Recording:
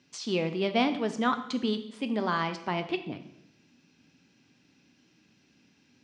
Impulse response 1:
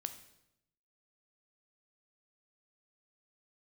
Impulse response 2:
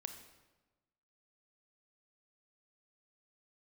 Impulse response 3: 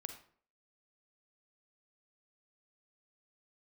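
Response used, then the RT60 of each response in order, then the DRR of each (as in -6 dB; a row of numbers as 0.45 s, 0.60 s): 1; 0.85 s, 1.2 s, 0.55 s; 8.5 dB, 7.0 dB, 6.5 dB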